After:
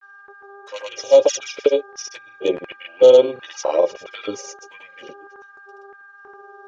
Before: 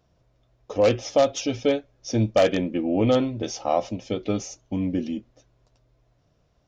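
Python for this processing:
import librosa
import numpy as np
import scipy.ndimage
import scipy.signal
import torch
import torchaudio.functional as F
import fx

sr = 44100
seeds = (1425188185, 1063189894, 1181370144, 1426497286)

y = x + 0.76 * np.pad(x, (int(2.1 * sr / 1000.0), 0))[:len(x)]
y = fx.env_flanger(y, sr, rest_ms=5.1, full_db=-16.0)
y = fx.dmg_buzz(y, sr, base_hz=400.0, harmonics=4, level_db=-48.0, tilt_db=0, odd_only=False)
y = fx.filter_lfo_highpass(y, sr, shape='square', hz=1.5, low_hz=380.0, high_hz=1700.0, q=1.7)
y = fx.granulator(y, sr, seeds[0], grain_ms=100.0, per_s=20.0, spray_ms=100.0, spread_st=0)
y = F.gain(torch.from_numpy(y), 4.5).numpy()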